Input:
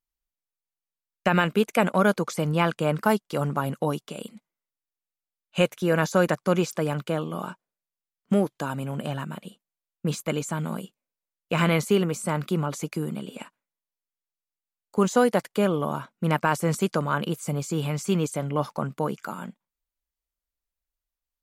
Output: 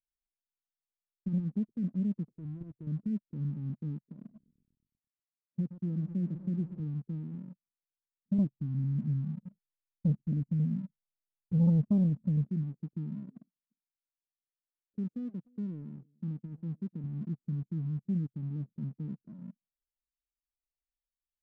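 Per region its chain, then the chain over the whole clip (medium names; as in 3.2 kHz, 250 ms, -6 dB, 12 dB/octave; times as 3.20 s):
2.32–2.87 s: level held to a coarse grid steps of 10 dB + comb 2.5 ms, depth 72%
4.07–6.80 s: high-pass 94 Hz + bit-crushed delay 122 ms, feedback 80%, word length 8-bit, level -14.5 dB
8.38–12.49 s: bass shelf 390 Hz +9 dB + touch-sensitive flanger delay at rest 2.7 ms, full sweep at -14.5 dBFS
13.40–17.04 s: bass shelf 220 Hz -8.5 dB + delay 299 ms -22.5 dB
whole clip: inverse Chebyshev low-pass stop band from 810 Hz, stop band 60 dB; waveshaping leveller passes 1; trim -8.5 dB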